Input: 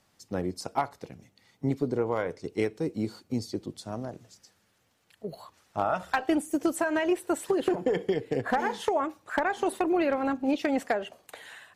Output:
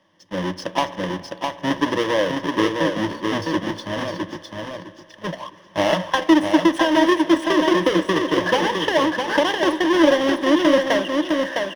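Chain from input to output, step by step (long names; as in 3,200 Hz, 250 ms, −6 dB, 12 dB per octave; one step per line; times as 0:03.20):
each half-wave held at its own peak
spring reverb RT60 3.2 s, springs 41/55 ms, chirp 25 ms, DRR 19 dB
in parallel at −7 dB: wrap-around overflow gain 26 dB
on the sum: three-way crossover with the lows and the highs turned down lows −14 dB, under 160 Hz, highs −20 dB, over 4,900 Hz
notch filter 1,400 Hz, Q 14
on a send: repeating echo 658 ms, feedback 22%, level −4.5 dB
on the sum: automatic gain control gain up to 6.5 dB
EQ curve with evenly spaced ripples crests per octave 1.2, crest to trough 12 dB
level −2 dB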